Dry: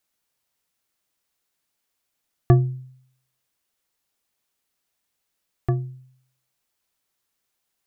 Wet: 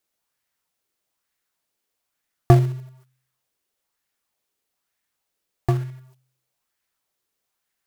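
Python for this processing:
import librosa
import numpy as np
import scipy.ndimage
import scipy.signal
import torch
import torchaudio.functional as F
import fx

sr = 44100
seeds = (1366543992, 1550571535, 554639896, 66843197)

p1 = fx.quant_companded(x, sr, bits=4)
p2 = x + F.gain(torch.from_numpy(p1), -5.0).numpy()
p3 = fx.bell_lfo(p2, sr, hz=1.1, low_hz=380.0, high_hz=1900.0, db=7)
y = F.gain(torch.from_numpy(p3), -2.0).numpy()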